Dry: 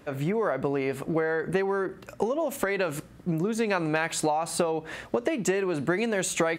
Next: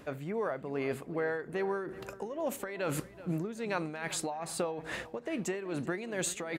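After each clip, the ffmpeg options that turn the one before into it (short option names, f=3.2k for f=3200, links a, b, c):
-filter_complex "[0:a]areverse,acompressor=threshold=-34dB:ratio=5,areverse,tremolo=f=2.4:d=0.63,asplit=2[a][b];[b]adelay=378,lowpass=f=3.5k:p=1,volume=-16dB,asplit=2[c][d];[d]adelay=378,lowpass=f=3.5k:p=1,volume=0.42,asplit=2[e][f];[f]adelay=378,lowpass=f=3.5k:p=1,volume=0.42,asplit=2[g][h];[h]adelay=378,lowpass=f=3.5k:p=1,volume=0.42[i];[a][c][e][g][i]amix=inputs=5:normalize=0,volume=4dB"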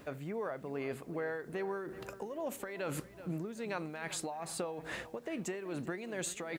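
-af "acrusher=bits=10:mix=0:aa=0.000001,acompressor=threshold=-38dB:ratio=1.5,volume=-1.5dB"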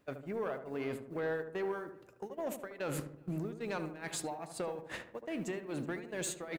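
-filter_complex "[0:a]agate=range=-19dB:threshold=-40dB:ratio=16:detection=peak,asoftclip=type=tanh:threshold=-31.5dB,asplit=2[a][b];[b]adelay=75,lowpass=f=1.3k:p=1,volume=-8dB,asplit=2[c][d];[d]adelay=75,lowpass=f=1.3k:p=1,volume=0.53,asplit=2[e][f];[f]adelay=75,lowpass=f=1.3k:p=1,volume=0.53,asplit=2[g][h];[h]adelay=75,lowpass=f=1.3k:p=1,volume=0.53,asplit=2[i][j];[j]adelay=75,lowpass=f=1.3k:p=1,volume=0.53,asplit=2[k][l];[l]adelay=75,lowpass=f=1.3k:p=1,volume=0.53[m];[a][c][e][g][i][k][m]amix=inputs=7:normalize=0,volume=2dB"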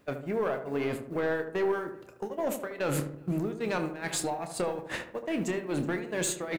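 -filter_complex "[0:a]asplit=2[a][b];[b]aeval=exprs='clip(val(0),-1,0.00708)':c=same,volume=-10.5dB[c];[a][c]amix=inputs=2:normalize=0,asplit=2[d][e];[e]adelay=28,volume=-10.5dB[f];[d][f]amix=inputs=2:normalize=0,volume=5.5dB"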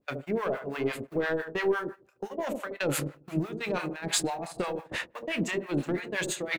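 -filter_complex "[0:a]agate=range=-14dB:threshold=-39dB:ratio=16:detection=peak,equalizer=f=3k:w=0.67:g=5,acrossover=split=730[a][b];[a]aeval=exprs='val(0)*(1-1/2+1/2*cos(2*PI*5.9*n/s))':c=same[c];[b]aeval=exprs='val(0)*(1-1/2-1/2*cos(2*PI*5.9*n/s))':c=same[d];[c][d]amix=inputs=2:normalize=0,volume=4.5dB"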